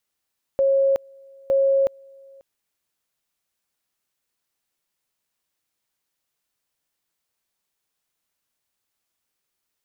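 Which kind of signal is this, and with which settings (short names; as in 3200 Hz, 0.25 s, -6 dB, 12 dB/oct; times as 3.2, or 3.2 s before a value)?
two-level tone 545 Hz -15 dBFS, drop 29 dB, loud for 0.37 s, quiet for 0.54 s, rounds 2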